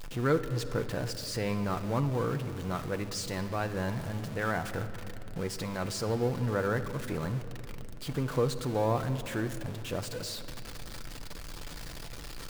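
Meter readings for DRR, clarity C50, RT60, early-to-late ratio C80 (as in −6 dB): 7.0 dB, 11.5 dB, 3.0 s, 12.5 dB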